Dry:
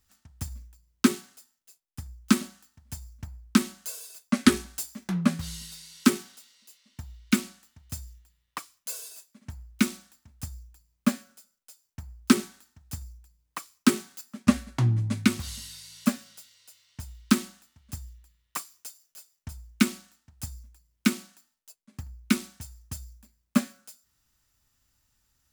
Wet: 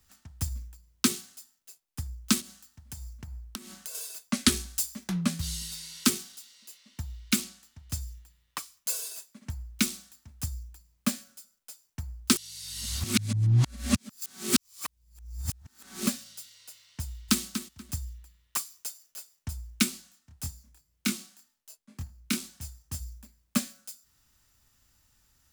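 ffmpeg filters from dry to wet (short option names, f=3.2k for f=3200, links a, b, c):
-filter_complex "[0:a]asettb=1/sr,asplit=3[a][b][c];[a]atrim=end=2.404[d];[b]atrim=start=2.4:end=3.95,asetpts=PTS-STARTPTS,afade=t=in:d=0.004:c=qsin,afade=t=out:st=1.546:d=0.004:c=qsin,acompressor=threshold=-41dB:ratio=6:attack=3.2:release=140:knee=1:detection=peak[e];[c]atrim=start=3.946[f];[d][e]acrossfade=d=0.004:c1=hsin:c2=qsin[g];[g][f]acrossfade=d=0.004:c1=qsin:c2=hsin,asettb=1/sr,asplit=3[h][i][j];[h]atrim=end=7.444[k];[i]atrim=start=7.44:end=8.01,asetpts=PTS-STARTPTS,afade=t=in:d=0.004:c=qsin,afade=t=out:st=0.566:d=0.004:c=qsin,highshelf=f=9.1k:g=-5.5[l];[j]atrim=start=8.006[m];[k][l]acrossfade=d=0.004:c1=hsin:c2=qsin[n];[n][m]acrossfade=d=0.004:c1=qsin:c2=hsin,asplit=2[o][p];[p]afade=t=in:st=17.04:d=0.01,afade=t=out:st=17.44:d=0.01,aecho=0:1:240|480:0.298538|0.0447807[q];[o][q]amix=inputs=2:normalize=0,asplit=3[r][s][t];[r]afade=t=out:st=19.84:d=0.02[u];[s]flanger=delay=22.5:depth=5:speed=2,afade=t=in:st=19.84:d=0.02,afade=t=out:st=22.99:d=0.02[v];[t]afade=t=in:st=22.99:d=0.02[w];[u][v][w]amix=inputs=3:normalize=0,asplit=3[x][y][z];[x]atrim=end=12.362[aa];[y]atrim=start=12.358:end=16.072,asetpts=PTS-STARTPTS,areverse[ab];[z]atrim=start=16.068[ac];[aa][ab]acrossfade=d=0.004:c1=hsin:c2=hsin[ad];[ad][ac]acrossfade=d=0.004:c1=hsin:c2=hsin,acrossover=split=120|3000[ae][af][ag];[af]acompressor=threshold=-54dB:ratio=1.5[ah];[ae][ah][ag]amix=inputs=3:normalize=0,volume=5dB"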